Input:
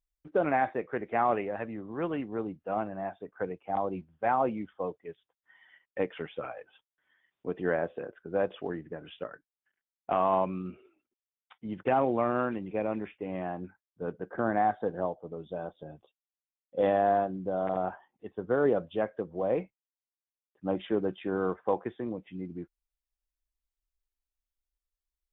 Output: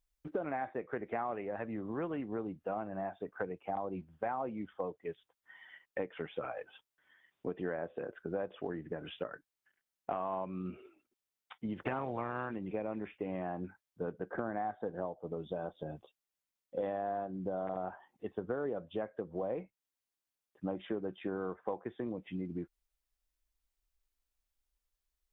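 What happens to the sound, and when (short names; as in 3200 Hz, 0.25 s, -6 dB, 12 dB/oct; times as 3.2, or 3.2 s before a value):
11.75–12.5 spectral limiter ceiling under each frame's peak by 14 dB
whole clip: dynamic EQ 3000 Hz, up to -4 dB, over -52 dBFS, Q 1.6; compressor 5:1, threshold -39 dBFS; gain +4 dB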